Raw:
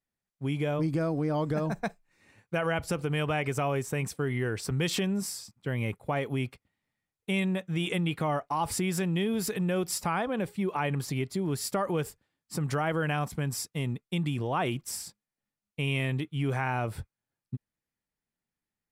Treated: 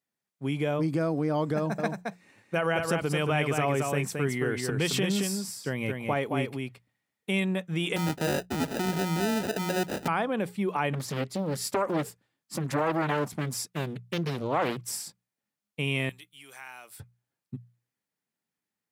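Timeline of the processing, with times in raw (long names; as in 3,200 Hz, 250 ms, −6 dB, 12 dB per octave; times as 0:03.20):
0:01.56–0:07.41: single-tap delay 221 ms −4.5 dB
0:07.96–0:10.08: sample-rate reduction 1,100 Hz
0:10.93–0:14.84: highs frequency-modulated by the lows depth 0.95 ms
0:16.09–0:17.00: first difference
whole clip: high-pass filter 140 Hz; mains-hum notches 60/120/180 Hz; level +2 dB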